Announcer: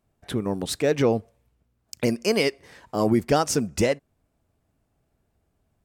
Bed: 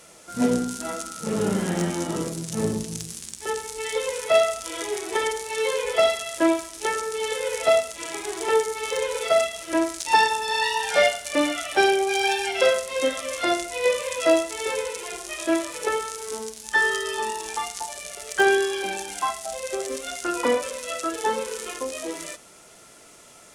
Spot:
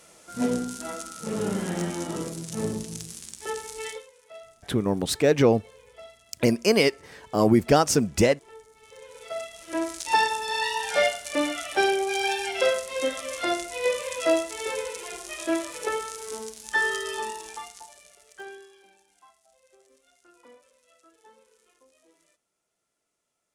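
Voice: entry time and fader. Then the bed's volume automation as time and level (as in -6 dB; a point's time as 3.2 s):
4.40 s, +2.0 dB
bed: 3.88 s -4 dB
4.1 s -27 dB
8.69 s -27 dB
9.91 s -3.5 dB
17.18 s -3.5 dB
18.99 s -31 dB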